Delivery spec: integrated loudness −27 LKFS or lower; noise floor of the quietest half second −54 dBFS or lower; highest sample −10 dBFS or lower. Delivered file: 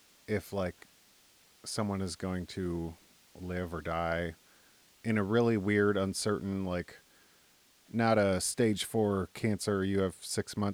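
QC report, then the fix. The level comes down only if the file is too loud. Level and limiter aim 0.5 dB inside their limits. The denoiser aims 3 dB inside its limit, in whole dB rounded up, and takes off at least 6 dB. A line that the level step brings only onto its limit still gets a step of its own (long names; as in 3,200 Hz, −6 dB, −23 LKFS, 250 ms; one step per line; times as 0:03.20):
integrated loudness −32.5 LKFS: in spec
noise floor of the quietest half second −64 dBFS: in spec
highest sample −14.5 dBFS: in spec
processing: no processing needed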